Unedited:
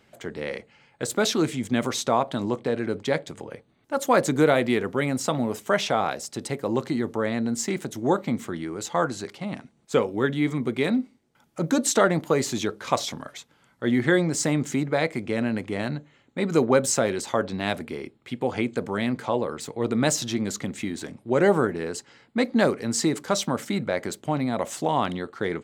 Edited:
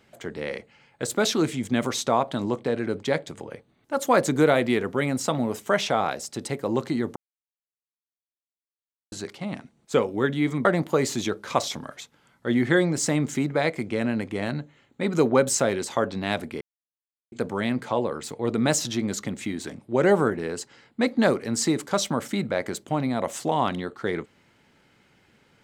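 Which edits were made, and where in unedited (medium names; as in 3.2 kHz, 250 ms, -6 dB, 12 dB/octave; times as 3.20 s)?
7.16–9.12 s: mute
10.65–12.02 s: delete
17.98–18.69 s: mute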